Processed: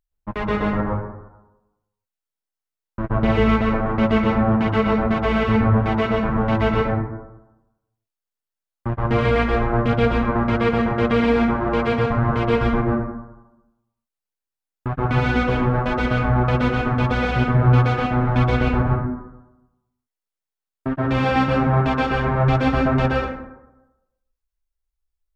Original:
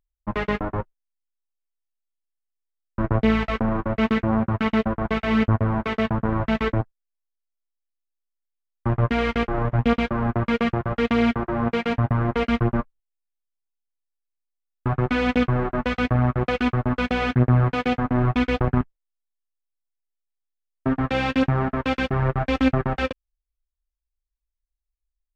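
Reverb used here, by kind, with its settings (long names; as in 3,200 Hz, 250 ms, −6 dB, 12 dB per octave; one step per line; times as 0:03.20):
dense smooth reverb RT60 0.97 s, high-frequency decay 0.4×, pre-delay 110 ms, DRR −4 dB
level −2 dB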